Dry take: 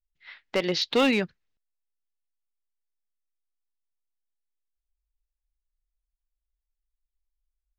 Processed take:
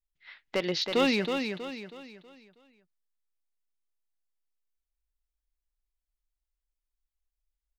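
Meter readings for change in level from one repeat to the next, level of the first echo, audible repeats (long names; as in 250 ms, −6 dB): −8.0 dB, −6.0 dB, 4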